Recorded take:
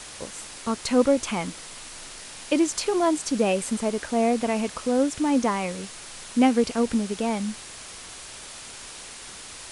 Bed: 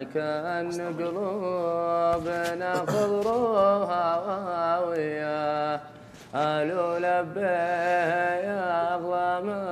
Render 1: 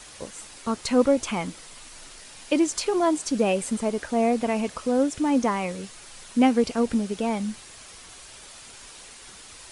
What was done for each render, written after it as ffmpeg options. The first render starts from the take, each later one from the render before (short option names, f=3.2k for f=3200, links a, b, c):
-af "afftdn=nr=6:nf=-41"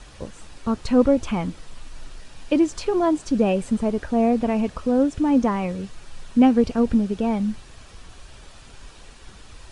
-af "aemphasis=mode=reproduction:type=bsi,bandreject=f=2.1k:w=15"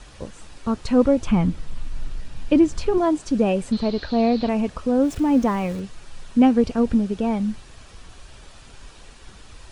-filter_complex "[0:a]asettb=1/sr,asplit=3[a][b][c];[a]atrim=end=1.274[d];[b]atrim=start=1.27:end=2.98,asetpts=PTS-STARTPTS,afade=t=in:d=0.004:c=qsin,afade=t=out:st=1.706:d=0.004:c=qsin,bass=f=250:g=10,treble=f=4k:g=-3[e];[c]atrim=start=2.976[f];[d][e]acrossfade=d=0.004:c1=hsin:c2=qsin[g];[g][f]acrossfade=d=0.004:c1=qsin:c2=hsin,asettb=1/sr,asplit=3[h][i][j];[h]atrim=end=3.724[k];[i]atrim=start=3.72:end=4.49,asetpts=PTS-STARTPTS,afade=t=in:d=0.004:c=qsin,afade=t=out:st=0.766:d=0.004:c=qsin,lowpass=f=4.2k:t=q:w=12[l];[j]atrim=start=4.486[m];[k][l]acrossfade=d=0.004:c1=hsin:c2=qsin[n];[n][m]acrossfade=d=0.004:c1=qsin:c2=hsin,asettb=1/sr,asplit=3[o][p][q];[o]atrim=end=5.034[r];[p]atrim=start=5.03:end=5.8,asetpts=PTS-STARTPTS,afade=t=in:d=0.004:c=qsin,afade=t=out:st=0.766:d=0.004:c=qsin,aeval=exprs='val(0)+0.5*0.015*sgn(val(0))':c=same[s];[q]atrim=start=5.796[t];[r][s]acrossfade=d=0.004:c1=hsin:c2=qsin[u];[u][t]acrossfade=d=0.004:c1=qsin:c2=hsin"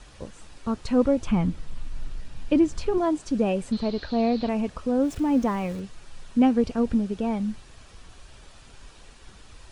-af "volume=-4dB"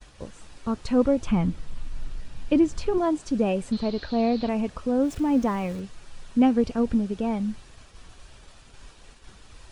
-af "agate=range=-33dB:threshold=-45dB:ratio=3:detection=peak"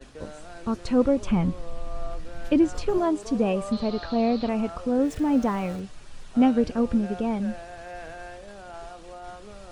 -filter_complex "[1:a]volume=-15.5dB[a];[0:a][a]amix=inputs=2:normalize=0"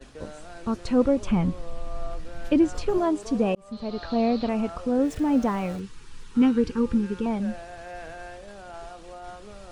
-filter_complex "[0:a]asettb=1/sr,asplit=3[a][b][c];[a]atrim=end=5.784[d];[b]atrim=start=5.78:end=7.26,asetpts=PTS-STARTPTS,afade=t=in:d=0.004:c=qsin,afade=t=out:st=1.476:d=0.004:c=qsin,asuperstop=centerf=650:order=8:qfactor=2[e];[c]atrim=start=7.256[f];[d][e]acrossfade=d=0.004:c1=hsin:c2=qsin[g];[g][f]acrossfade=d=0.004:c1=qsin:c2=hsin,asplit=2[h][i];[h]atrim=end=3.55,asetpts=PTS-STARTPTS,afade=t=out:st=3.546:d=0.004:c=hsin[j];[i]atrim=start=3.55,asetpts=PTS-STARTPTS,afade=t=in:d=0.59[k];[j][k]concat=n=2:v=0:a=1"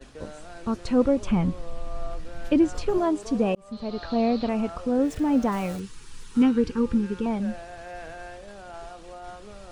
-filter_complex "[0:a]asettb=1/sr,asplit=3[a][b][c];[a]atrim=end=5.524[d];[b]atrim=start=5.52:end=6.43,asetpts=PTS-STARTPTS,afade=t=in:d=0.004:c=qsin,afade=t=out:st=0.906:d=0.004:c=qsin,highshelf=f=6k:g=10[e];[c]atrim=start=6.426[f];[d][e]acrossfade=d=0.004:c1=hsin:c2=qsin[g];[g][f]acrossfade=d=0.004:c1=qsin:c2=hsin"